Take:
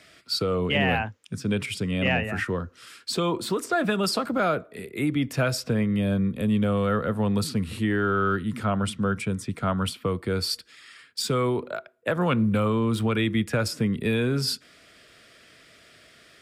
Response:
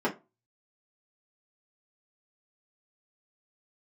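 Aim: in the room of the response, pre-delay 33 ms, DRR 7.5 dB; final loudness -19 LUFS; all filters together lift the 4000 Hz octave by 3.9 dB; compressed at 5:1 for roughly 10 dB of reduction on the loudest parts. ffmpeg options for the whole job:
-filter_complex "[0:a]equalizer=f=4k:t=o:g=5,acompressor=threshold=-31dB:ratio=5,asplit=2[a][b];[1:a]atrim=start_sample=2205,adelay=33[c];[b][c]afir=irnorm=-1:irlink=0,volume=-18.5dB[d];[a][d]amix=inputs=2:normalize=0,volume=13.5dB"

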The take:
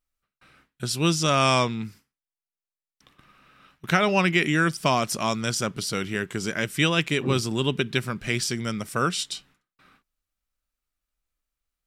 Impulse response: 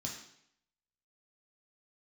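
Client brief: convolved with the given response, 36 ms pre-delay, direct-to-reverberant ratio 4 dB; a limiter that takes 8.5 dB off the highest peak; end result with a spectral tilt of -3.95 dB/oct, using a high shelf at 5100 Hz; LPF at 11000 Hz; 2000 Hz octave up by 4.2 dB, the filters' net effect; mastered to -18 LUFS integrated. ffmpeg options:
-filter_complex "[0:a]lowpass=11k,equalizer=f=2k:t=o:g=4.5,highshelf=f=5.1k:g=6,alimiter=limit=-12dB:level=0:latency=1,asplit=2[a][b];[1:a]atrim=start_sample=2205,adelay=36[c];[b][c]afir=irnorm=-1:irlink=0,volume=-3.5dB[d];[a][d]amix=inputs=2:normalize=0,volume=4dB"

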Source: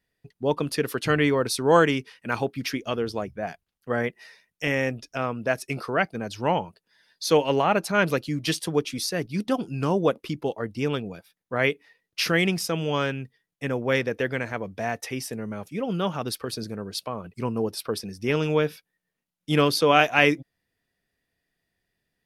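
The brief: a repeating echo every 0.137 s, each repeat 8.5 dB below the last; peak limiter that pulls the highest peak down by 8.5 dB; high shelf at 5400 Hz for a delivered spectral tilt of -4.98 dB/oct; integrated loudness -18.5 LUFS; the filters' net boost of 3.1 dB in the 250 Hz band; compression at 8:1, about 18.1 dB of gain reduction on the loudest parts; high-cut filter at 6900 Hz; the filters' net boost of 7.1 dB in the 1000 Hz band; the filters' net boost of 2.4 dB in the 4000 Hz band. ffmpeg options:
-af "lowpass=6.9k,equalizer=f=250:t=o:g=3.5,equalizer=f=1k:t=o:g=9,equalizer=f=4k:t=o:g=5,highshelf=f=5.4k:g=-4.5,acompressor=threshold=-27dB:ratio=8,alimiter=limit=-21.5dB:level=0:latency=1,aecho=1:1:137|274|411|548:0.376|0.143|0.0543|0.0206,volume=15.5dB"

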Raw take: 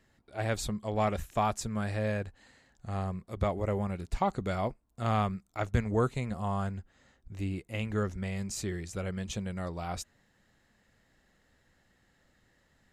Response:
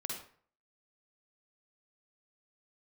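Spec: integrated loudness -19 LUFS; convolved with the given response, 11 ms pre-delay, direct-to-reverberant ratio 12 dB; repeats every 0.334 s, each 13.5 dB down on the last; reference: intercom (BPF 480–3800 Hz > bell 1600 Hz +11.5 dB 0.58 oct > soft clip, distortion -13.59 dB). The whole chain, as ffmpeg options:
-filter_complex "[0:a]aecho=1:1:334|668:0.211|0.0444,asplit=2[a][b];[1:a]atrim=start_sample=2205,adelay=11[c];[b][c]afir=irnorm=-1:irlink=0,volume=-12.5dB[d];[a][d]amix=inputs=2:normalize=0,highpass=480,lowpass=3.8k,equalizer=f=1.6k:t=o:w=0.58:g=11.5,asoftclip=threshold=-22.5dB,volume=17dB"

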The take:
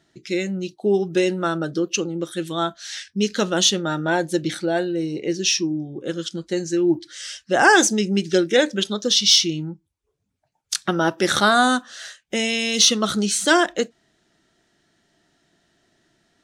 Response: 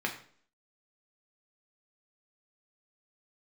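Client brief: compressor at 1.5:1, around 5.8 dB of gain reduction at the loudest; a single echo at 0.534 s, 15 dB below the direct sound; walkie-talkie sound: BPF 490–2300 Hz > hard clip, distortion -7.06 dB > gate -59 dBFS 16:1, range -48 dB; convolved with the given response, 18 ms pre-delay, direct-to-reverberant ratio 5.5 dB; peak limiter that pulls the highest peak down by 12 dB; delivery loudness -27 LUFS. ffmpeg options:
-filter_complex "[0:a]acompressor=threshold=-26dB:ratio=1.5,alimiter=limit=-19dB:level=0:latency=1,aecho=1:1:534:0.178,asplit=2[a][b];[1:a]atrim=start_sample=2205,adelay=18[c];[b][c]afir=irnorm=-1:irlink=0,volume=-12dB[d];[a][d]amix=inputs=2:normalize=0,highpass=490,lowpass=2.3k,asoftclip=type=hard:threshold=-33dB,agate=range=-48dB:threshold=-59dB:ratio=16,volume=10dB"

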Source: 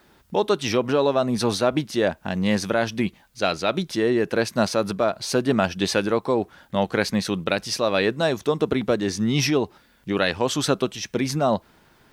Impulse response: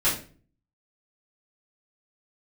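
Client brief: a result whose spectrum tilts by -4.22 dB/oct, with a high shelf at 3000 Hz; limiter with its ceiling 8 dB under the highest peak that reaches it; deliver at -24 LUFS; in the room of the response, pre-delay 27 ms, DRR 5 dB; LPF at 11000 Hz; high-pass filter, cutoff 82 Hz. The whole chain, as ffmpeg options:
-filter_complex "[0:a]highpass=82,lowpass=11k,highshelf=f=3k:g=4,alimiter=limit=-12dB:level=0:latency=1,asplit=2[a][b];[1:a]atrim=start_sample=2205,adelay=27[c];[b][c]afir=irnorm=-1:irlink=0,volume=-18dB[d];[a][d]amix=inputs=2:normalize=0,volume=-0.5dB"

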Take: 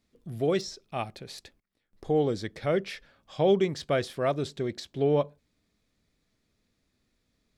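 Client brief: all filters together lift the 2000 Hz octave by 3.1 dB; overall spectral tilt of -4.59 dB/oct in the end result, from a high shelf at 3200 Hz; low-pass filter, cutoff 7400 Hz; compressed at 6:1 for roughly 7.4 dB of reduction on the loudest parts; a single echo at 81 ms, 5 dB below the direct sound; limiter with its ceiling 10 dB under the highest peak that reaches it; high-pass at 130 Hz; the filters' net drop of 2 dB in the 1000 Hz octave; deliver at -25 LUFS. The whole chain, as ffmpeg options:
-af "highpass=130,lowpass=7.4k,equalizer=f=1k:t=o:g=-4,equalizer=f=2k:t=o:g=7,highshelf=f=3.2k:g=-6.5,acompressor=threshold=-27dB:ratio=6,alimiter=level_in=2.5dB:limit=-24dB:level=0:latency=1,volume=-2.5dB,aecho=1:1:81:0.562,volume=13dB"

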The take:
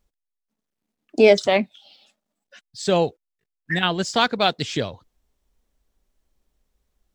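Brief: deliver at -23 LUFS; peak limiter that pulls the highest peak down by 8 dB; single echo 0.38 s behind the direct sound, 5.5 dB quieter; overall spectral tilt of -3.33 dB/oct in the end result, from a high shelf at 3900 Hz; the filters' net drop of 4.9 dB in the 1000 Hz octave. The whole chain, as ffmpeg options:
-af "equalizer=f=1k:t=o:g=-8,highshelf=f=3.9k:g=8.5,alimiter=limit=-11.5dB:level=0:latency=1,aecho=1:1:380:0.531,volume=1.5dB"

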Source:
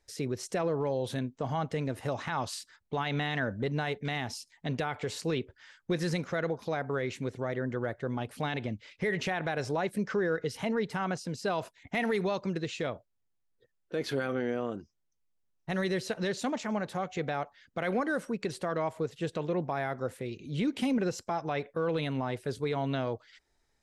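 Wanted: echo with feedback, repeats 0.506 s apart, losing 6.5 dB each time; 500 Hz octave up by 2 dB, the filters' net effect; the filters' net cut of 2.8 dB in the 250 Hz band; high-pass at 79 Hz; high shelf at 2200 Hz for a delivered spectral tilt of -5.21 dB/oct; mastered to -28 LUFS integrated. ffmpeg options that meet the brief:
-af "highpass=79,equalizer=f=250:t=o:g=-5,equalizer=f=500:t=o:g=4,highshelf=f=2.2k:g=-5.5,aecho=1:1:506|1012|1518|2024|2530|3036:0.473|0.222|0.105|0.0491|0.0231|0.0109,volume=4.5dB"

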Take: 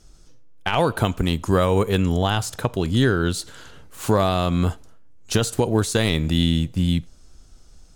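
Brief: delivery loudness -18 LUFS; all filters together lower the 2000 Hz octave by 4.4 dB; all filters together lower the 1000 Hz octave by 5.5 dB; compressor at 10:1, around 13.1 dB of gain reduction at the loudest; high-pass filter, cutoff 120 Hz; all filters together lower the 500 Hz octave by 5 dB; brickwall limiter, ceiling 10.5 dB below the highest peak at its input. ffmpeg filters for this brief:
-af "highpass=120,equalizer=f=500:t=o:g=-5,equalizer=f=1k:t=o:g=-4.5,equalizer=f=2k:t=o:g=-4,acompressor=threshold=-30dB:ratio=10,volume=19dB,alimiter=limit=-5.5dB:level=0:latency=1"

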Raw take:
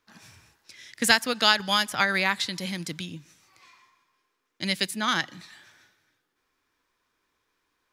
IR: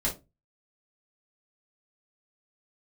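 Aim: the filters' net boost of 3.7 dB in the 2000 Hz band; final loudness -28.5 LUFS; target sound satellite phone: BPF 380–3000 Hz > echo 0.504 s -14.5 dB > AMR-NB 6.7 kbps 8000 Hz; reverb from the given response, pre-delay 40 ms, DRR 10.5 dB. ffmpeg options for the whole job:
-filter_complex "[0:a]equalizer=f=2k:t=o:g=5.5,asplit=2[a][b];[1:a]atrim=start_sample=2205,adelay=40[c];[b][c]afir=irnorm=-1:irlink=0,volume=-17.5dB[d];[a][d]amix=inputs=2:normalize=0,highpass=380,lowpass=3k,aecho=1:1:504:0.188,volume=-4dB" -ar 8000 -c:a libopencore_amrnb -b:a 6700

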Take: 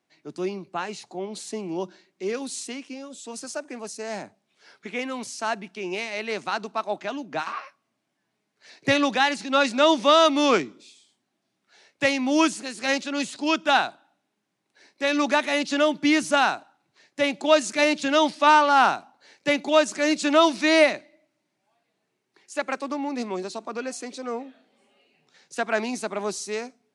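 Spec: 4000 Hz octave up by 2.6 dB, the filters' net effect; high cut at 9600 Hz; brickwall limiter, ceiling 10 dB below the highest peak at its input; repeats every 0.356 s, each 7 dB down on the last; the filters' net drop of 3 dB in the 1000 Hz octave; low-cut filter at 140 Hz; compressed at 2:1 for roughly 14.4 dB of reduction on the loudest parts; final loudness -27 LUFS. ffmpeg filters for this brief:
-af "highpass=140,lowpass=9.6k,equalizer=f=1k:t=o:g=-4,equalizer=f=4k:t=o:g=3.5,acompressor=threshold=-41dB:ratio=2,alimiter=level_in=4.5dB:limit=-24dB:level=0:latency=1,volume=-4.5dB,aecho=1:1:356|712|1068|1424|1780:0.447|0.201|0.0905|0.0407|0.0183,volume=11.5dB"

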